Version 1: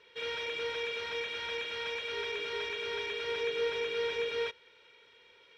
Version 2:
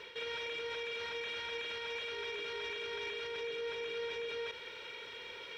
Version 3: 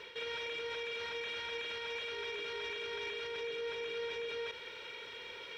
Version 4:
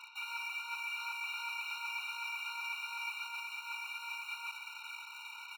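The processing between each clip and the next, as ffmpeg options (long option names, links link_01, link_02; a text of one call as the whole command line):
ffmpeg -i in.wav -af "areverse,acompressor=threshold=-45dB:ratio=5,areverse,alimiter=level_in=22dB:limit=-24dB:level=0:latency=1:release=37,volume=-22dB,volume=13dB" out.wav
ffmpeg -i in.wav -af anull out.wav
ffmpeg -i in.wav -filter_complex "[0:a]aecho=1:1:504:0.282,asplit=2[link_01][link_02];[link_02]acrusher=bits=6:mix=0:aa=0.000001,volume=-9.5dB[link_03];[link_01][link_03]amix=inputs=2:normalize=0,afftfilt=real='re*eq(mod(floor(b*sr/1024/750),2),1)':imag='im*eq(mod(floor(b*sr/1024/750),2),1)':win_size=1024:overlap=0.75,volume=1dB" out.wav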